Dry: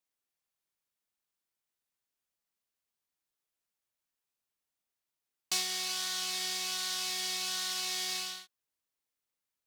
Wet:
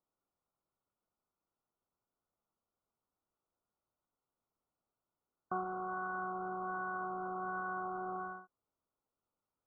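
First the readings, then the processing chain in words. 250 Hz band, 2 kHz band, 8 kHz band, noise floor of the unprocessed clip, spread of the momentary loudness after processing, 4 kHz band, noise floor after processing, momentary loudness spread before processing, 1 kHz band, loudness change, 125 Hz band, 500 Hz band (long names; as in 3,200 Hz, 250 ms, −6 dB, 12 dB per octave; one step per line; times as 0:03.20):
+7.5 dB, −2.5 dB, below −40 dB, below −85 dBFS, 3 LU, below −40 dB, below −85 dBFS, 2 LU, +7.5 dB, −7.5 dB, can't be measured, +7.5 dB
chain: adaptive Wiener filter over 15 samples
linear-phase brick-wall low-pass 1,500 Hz
level +7.5 dB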